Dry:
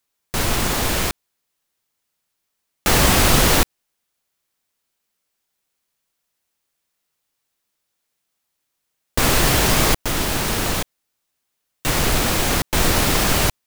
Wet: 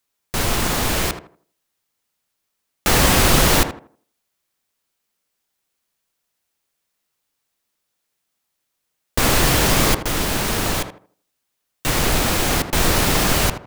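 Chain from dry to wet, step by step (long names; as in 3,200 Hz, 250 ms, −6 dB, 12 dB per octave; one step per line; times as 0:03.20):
tape delay 80 ms, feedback 34%, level −7 dB, low-pass 1,400 Hz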